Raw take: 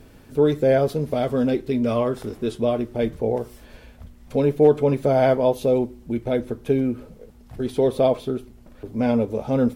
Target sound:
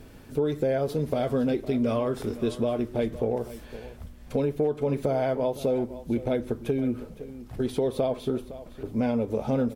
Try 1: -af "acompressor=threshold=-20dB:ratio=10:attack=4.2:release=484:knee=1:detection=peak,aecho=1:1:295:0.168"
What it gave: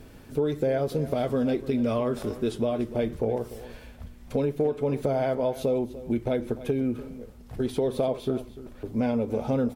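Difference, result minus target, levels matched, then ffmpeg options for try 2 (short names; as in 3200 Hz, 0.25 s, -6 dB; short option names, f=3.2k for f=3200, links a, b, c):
echo 0.215 s early
-af "acompressor=threshold=-20dB:ratio=10:attack=4.2:release=484:knee=1:detection=peak,aecho=1:1:510:0.168"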